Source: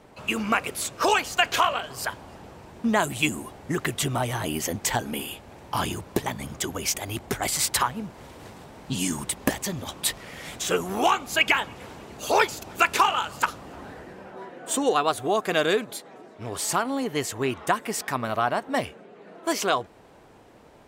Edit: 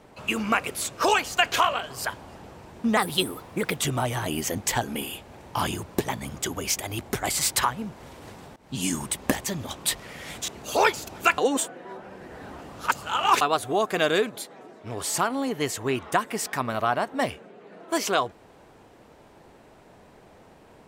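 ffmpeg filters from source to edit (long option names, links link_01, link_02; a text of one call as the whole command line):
ffmpeg -i in.wav -filter_complex "[0:a]asplit=7[link_01][link_02][link_03][link_04][link_05][link_06][link_07];[link_01]atrim=end=2.974[link_08];[link_02]atrim=start=2.97:end=3.96,asetpts=PTS-STARTPTS,asetrate=53802,aresample=44100,atrim=end_sample=35786,asetpts=PTS-STARTPTS[link_09];[link_03]atrim=start=3.956:end=8.74,asetpts=PTS-STARTPTS,afade=type=out:start_time=4.78:duration=0.004:curve=hsin:silence=0.0749894[link_10];[link_04]atrim=start=8.74:end=10.662,asetpts=PTS-STARTPTS,afade=type=in:duration=0.29:silence=0.0749894[link_11];[link_05]atrim=start=12.028:end=12.932[link_12];[link_06]atrim=start=12.928:end=14.962,asetpts=PTS-STARTPTS,areverse[link_13];[link_07]atrim=start=14.958[link_14];[link_08][link_09]acrossfade=duration=0.004:curve1=hsin:curve2=hsin[link_15];[link_10][link_11]concat=n=2:v=0:a=1[link_16];[link_15][link_16]acrossfade=duration=0.004:curve1=hsin:curve2=hsin[link_17];[link_17][link_12]acrossfade=duration=0.004:curve1=hsin:curve2=hsin[link_18];[link_18][link_13]acrossfade=duration=0.004:curve1=hsin:curve2=hsin[link_19];[link_19][link_14]acrossfade=duration=0.004:curve1=hsin:curve2=hsin" out.wav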